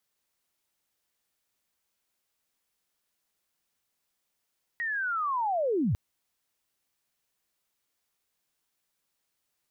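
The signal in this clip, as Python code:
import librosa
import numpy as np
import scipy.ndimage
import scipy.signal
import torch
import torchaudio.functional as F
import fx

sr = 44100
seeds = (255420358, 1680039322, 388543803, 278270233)

y = fx.chirp(sr, length_s=1.15, from_hz=1900.0, to_hz=78.0, law='linear', from_db=-28.5, to_db=-23.0)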